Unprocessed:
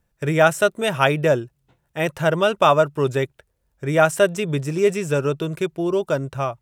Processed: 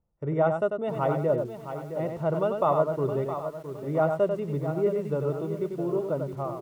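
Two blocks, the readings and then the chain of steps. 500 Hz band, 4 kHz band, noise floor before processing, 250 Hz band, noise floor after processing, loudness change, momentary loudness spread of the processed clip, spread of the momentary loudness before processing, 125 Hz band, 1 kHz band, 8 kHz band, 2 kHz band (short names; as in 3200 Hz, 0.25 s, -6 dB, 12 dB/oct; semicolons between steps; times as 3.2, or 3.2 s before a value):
-6.0 dB, under -20 dB, -71 dBFS, -6.0 dB, -42 dBFS, -7.5 dB, 8 LU, 9 LU, -6.0 dB, -8.0 dB, under -20 dB, -19.0 dB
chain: polynomial smoothing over 65 samples; echo 94 ms -6 dB; lo-fi delay 0.665 s, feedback 35%, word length 7-bit, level -9.5 dB; gain -7.5 dB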